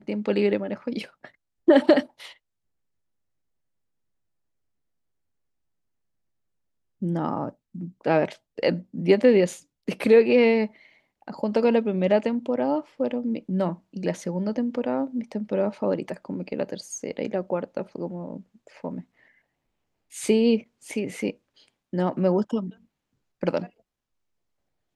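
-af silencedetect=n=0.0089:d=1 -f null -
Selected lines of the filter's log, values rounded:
silence_start: 2.33
silence_end: 7.02 | silence_duration: 4.69
silence_start: 19.01
silence_end: 20.12 | silence_duration: 1.11
silence_start: 23.67
silence_end: 24.95 | silence_duration: 1.29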